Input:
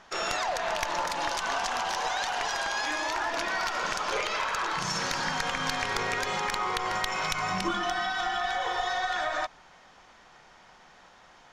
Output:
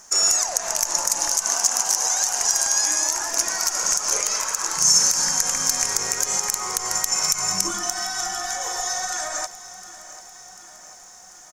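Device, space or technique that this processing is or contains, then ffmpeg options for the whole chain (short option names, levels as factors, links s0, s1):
over-bright horn tweeter: -filter_complex "[0:a]highshelf=f=4800:t=q:w=3:g=11,alimiter=limit=0.316:level=0:latency=1:release=84,asettb=1/sr,asplit=3[s0][s1][s2];[s0]atrim=end=1.474[s3];[s1]atrim=start=1.47:end=2.17,asetpts=PTS-STARTPTS,afade=t=in:d=0.004:c=qsin,afade=t=out:st=0.696:d=0.004:c=qsin,highpass=120[s4];[s2]atrim=start=2.166[s5];[s3][s4]acrossfade=d=0.004:c1=hsin:c2=qsin[s6];[s6][s5]acrossfade=d=0.004:c1=qsin:c2=hsin,aemphasis=mode=production:type=50fm,aecho=1:1:743|1486|2229|2972|3715|4458:0.15|0.0898|0.0539|0.0323|0.0194|0.0116,volume=0.891"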